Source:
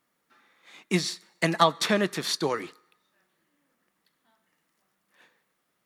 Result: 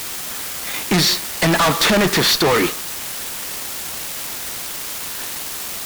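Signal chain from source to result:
low-pass filter 5,300 Hz 12 dB per octave
bit-depth reduction 8 bits, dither triangular
fuzz pedal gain 40 dB, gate −48 dBFS

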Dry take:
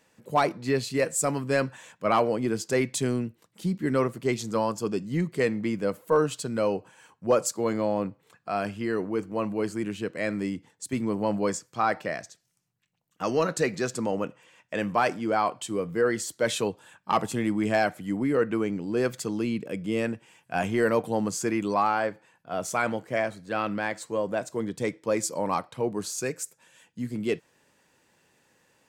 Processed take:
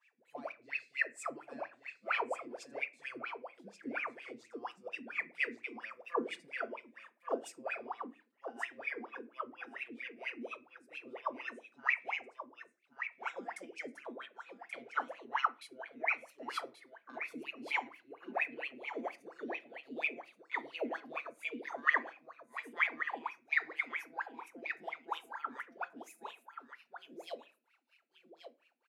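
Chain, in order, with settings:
pitch glide at a constant tempo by +8 semitones starting unshifted
high-shelf EQ 2,100 Hz +9 dB
comb filter 5.9 ms, depth 98%
LFO wah 4.3 Hz 230–2,600 Hz, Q 20
tilt shelving filter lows −8 dB, about 830 Hz
single-tap delay 1,131 ms −9 dB
convolution reverb RT60 0.35 s, pre-delay 4 ms, DRR 13 dB
level −1.5 dB

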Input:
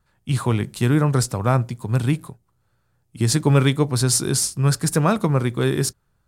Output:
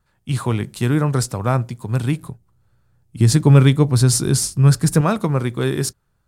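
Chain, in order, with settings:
0:02.23–0:05.01: low-shelf EQ 220 Hz +9 dB

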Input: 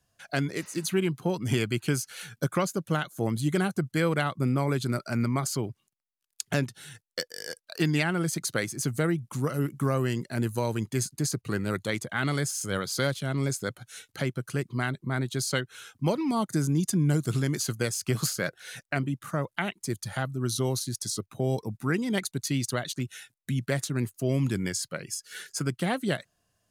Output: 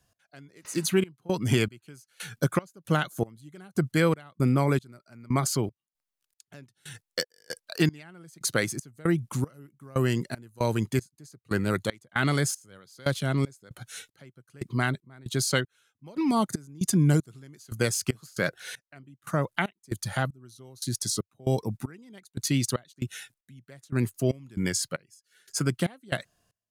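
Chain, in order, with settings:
gate pattern "x....xxx..xx" 116 BPM −24 dB
level +3 dB

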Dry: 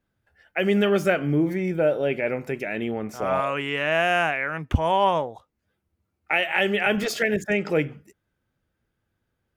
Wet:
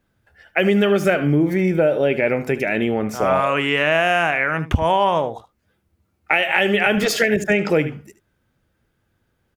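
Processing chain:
on a send: single-tap delay 75 ms −15 dB
on the sum: downward compressor 4 to 1, threshold −22 dBFS, peak gain reduction 7.5 dB
level +8.5 dB

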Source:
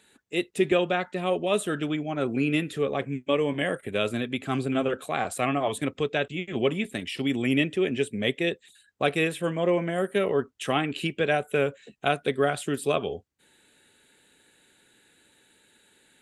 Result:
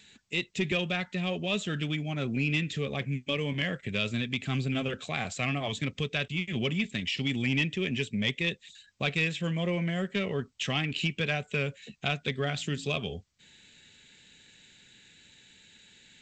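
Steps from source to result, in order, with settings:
flat-topped bell 650 Hz −12 dB 2.8 octaves
0:12.38–0:13.00: hum removal 54.65 Hz, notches 5
in parallel at +3 dB: downward compressor 4 to 1, threshold −41 dBFS, peak gain reduction 16 dB
on the sum: soft clipping −17 dBFS, distortion −20 dB
G.722 64 kbit/s 16,000 Hz

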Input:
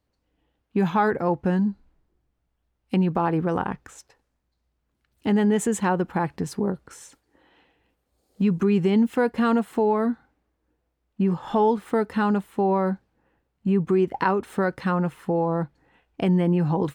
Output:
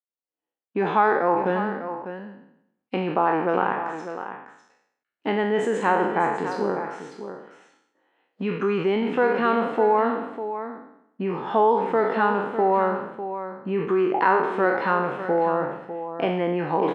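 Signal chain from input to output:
peak hold with a decay on every bin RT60 0.76 s
downward expander −54 dBFS
in parallel at +1 dB: brickwall limiter −15 dBFS, peak gain reduction 7.5 dB
on the sum: band-pass filter 390–2,500 Hz
on a send: single-tap delay 600 ms −10.5 dB
on the sum: level that may fall only so fast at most 87 dB per second
level −2.5 dB

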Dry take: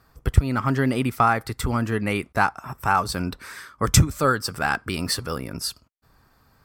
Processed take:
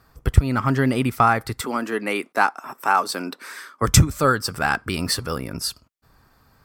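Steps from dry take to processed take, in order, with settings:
0:01.61–0:03.82: high-pass filter 250 Hz 24 dB per octave
level +2 dB

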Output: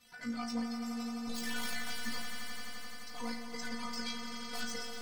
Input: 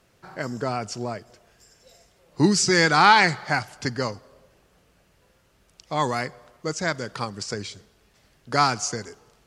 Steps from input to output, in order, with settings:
spectral magnitudes quantised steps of 15 dB
guitar amp tone stack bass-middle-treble 5-5-5
notch filter 7,000 Hz, Q 5.1
sine wavefolder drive 19 dB, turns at −14 dBFS
reversed playback
downward compressor 12 to 1, threshold −30 dBFS, peak gain reduction 14 dB
reversed playback
high-shelf EQ 5,800 Hz −4 dB
stiff-string resonator 240 Hz, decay 0.69 s, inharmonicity 0.002
time stretch by overlap-add 0.53×, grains 36 ms
on a send: echo that builds up and dies away 86 ms, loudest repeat 5, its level −10.5 dB
on the sum: level +10 dB

